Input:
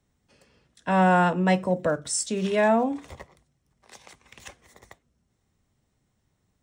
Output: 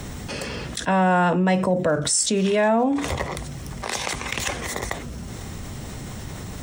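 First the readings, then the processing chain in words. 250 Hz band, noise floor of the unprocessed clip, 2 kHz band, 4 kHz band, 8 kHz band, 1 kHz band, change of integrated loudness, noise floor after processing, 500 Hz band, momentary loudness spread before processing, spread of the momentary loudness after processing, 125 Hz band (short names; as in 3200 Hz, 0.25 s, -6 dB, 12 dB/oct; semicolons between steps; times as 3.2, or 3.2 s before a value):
+3.5 dB, -74 dBFS, +3.5 dB, +10.0 dB, +8.0 dB, +2.0 dB, +0.5 dB, -35 dBFS, +3.0 dB, 9 LU, 16 LU, +4.0 dB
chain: fast leveller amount 70%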